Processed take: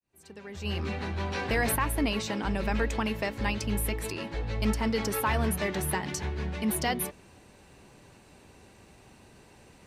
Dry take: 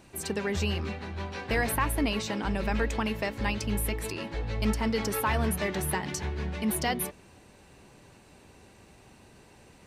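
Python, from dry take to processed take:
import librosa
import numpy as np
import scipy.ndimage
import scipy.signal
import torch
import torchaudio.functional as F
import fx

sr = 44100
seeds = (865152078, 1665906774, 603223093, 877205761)

y = fx.fade_in_head(x, sr, length_s=2.05)
y = fx.env_flatten(y, sr, amount_pct=50, at=(0.64, 1.75), fade=0.02)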